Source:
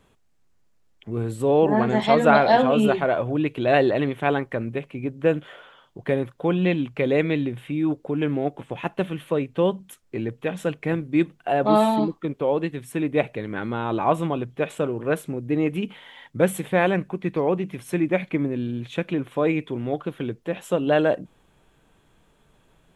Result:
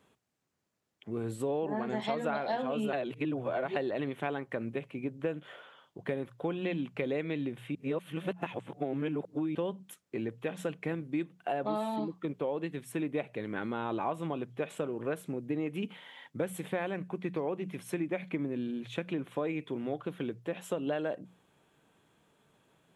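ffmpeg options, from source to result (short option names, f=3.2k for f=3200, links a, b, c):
-filter_complex "[0:a]asplit=5[a][b][c][d][e];[a]atrim=end=2.932[f];[b]atrim=start=2.928:end=3.762,asetpts=PTS-STARTPTS,areverse[g];[c]atrim=start=3.758:end=7.752[h];[d]atrim=start=7.748:end=9.552,asetpts=PTS-STARTPTS,areverse[i];[e]atrim=start=9.548[j];[f][g]acrossfade=d=0.004:c1=hsin:c2=hsin[k];[k][h]acrossfade=d=0.004:c1=hsin:c2=hsin[l];[l][i]acrossfade=d=0.004:c1=hsin:c2=hsin[m];[m][j]acrossfade=d=0.004:c1=hsin:c2=hsin,highpass=120,bandreject=f=60:t=h:w=6,bandreject=f=120:t=h:w=6,bandreject=f=180:t=h:w=6,acompressor=threshold=-24dB:ratio=6,volume=-5.5dB"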